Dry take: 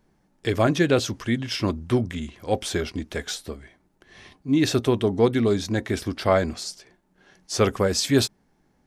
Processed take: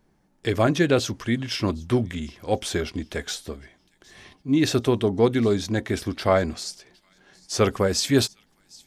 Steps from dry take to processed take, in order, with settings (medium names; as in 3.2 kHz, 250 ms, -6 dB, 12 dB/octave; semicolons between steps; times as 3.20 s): feedback echo behind a high-pass 759 ms, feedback 35%, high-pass 3.3 kHz, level -22 dB